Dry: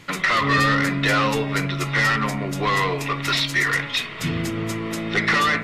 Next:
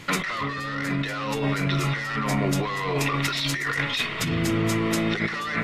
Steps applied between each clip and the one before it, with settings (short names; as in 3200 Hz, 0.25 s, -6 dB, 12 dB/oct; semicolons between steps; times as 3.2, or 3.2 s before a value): negative-ratio compressor -26 dBFS, ratio -1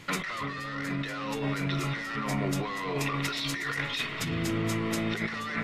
split-band echo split 2200 Hz, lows 0.347 s, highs 0.238 s, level -14.5 dB; gain -6 dB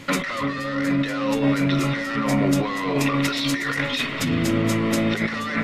small resonant body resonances 260/550 Hz, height 12 dB, ringing for 95 ms; gain +6.5 dB